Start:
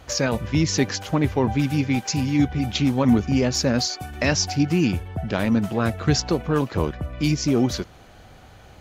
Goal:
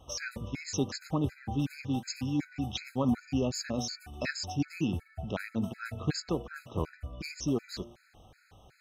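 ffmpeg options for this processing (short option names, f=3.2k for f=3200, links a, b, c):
-af "bandreject=f=117.5:t=h:w=4,bandreject=f=235:t=h:w=4,bandreject=f=352.5:t=h:w=4,bandreject=f=470:t=h:w=4,bandreject=f=587.5:t=h:w=4,afftfilt=real='re*gt(sin(2*PI*2.7*pts/sr)*(1-2*mod(floor(b*sr/1024/1300),2)),0)':imag='im*gt(sin(2*PI*2.7*pts/sr)*(1-2*mod(floor(b*sr/1024/1300),2)),0)':win_size=1024:overlap=0.75,volume=-8.5dB"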